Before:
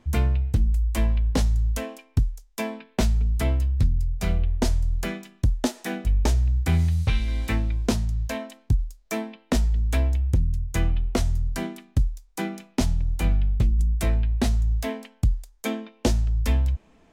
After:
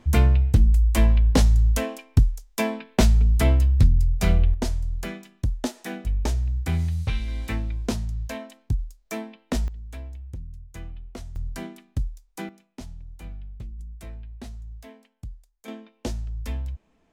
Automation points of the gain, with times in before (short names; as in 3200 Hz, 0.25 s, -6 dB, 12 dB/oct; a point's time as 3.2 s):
+4.5 dB
from 4.54 s -3.5 dB
from 9.68 s -15 dB
from 11.36 s -5.5 dB
from 12.49 s -16.5 dB
from 15.68 s -8.5 dB